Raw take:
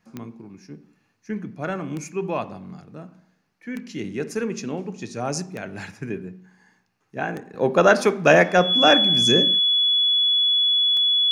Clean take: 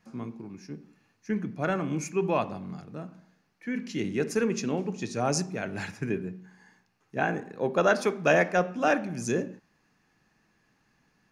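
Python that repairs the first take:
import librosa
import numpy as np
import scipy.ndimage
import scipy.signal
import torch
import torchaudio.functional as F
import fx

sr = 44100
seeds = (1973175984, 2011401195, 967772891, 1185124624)

y = fx.fix_declick_ar(x, sr, threshold=10.0)
y = fx.notch(y, sr, hz=3400.0, q=30.0)
y = fx.gain(y, sr, db=fx.steps((0.0, 0.0), (7.54, -7.5)))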